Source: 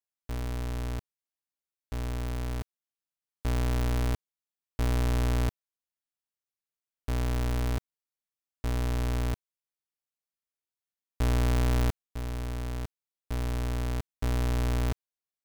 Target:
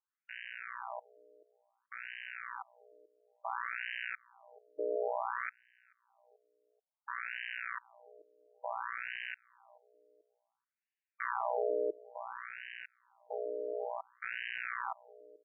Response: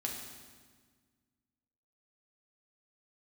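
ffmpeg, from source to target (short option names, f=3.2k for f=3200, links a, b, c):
-filter_complex "[0:a]asplit=2[a][b];[b]adelay=434,lowpass=f=900:p=1,volume=-21.5dB,asplit=2[c][d];[d]adelay=434,lowpass=f=900:p=1,volume=0.37,asplit=2[e][f];[f]adelay=434,lowpass=f=900:p=1,volume=0.37[g];[a][c][e][g]amix=inputs=4:normalize=0,afftfilt=real='re*between(b*sr/1024,440*pow(2200/440,0.5+0.5*sin(2*PI*0.57*pts/sr))/1.41,440*pow(2200/440,0.5+0.5*sin(2*PI*0.57*pts/sr))*1.41)':imag='im*between(b*sr/1024,440*pow(2200/440,0.5+0.5*sin(2*PI*0.57*pts/sr))/1.41,440*pow(2200/440,0.5+0.5*sin(2*PI*0.57*pts/sr))*1.41)':win_size=1024:overlap=0.75,volume=6.5dB"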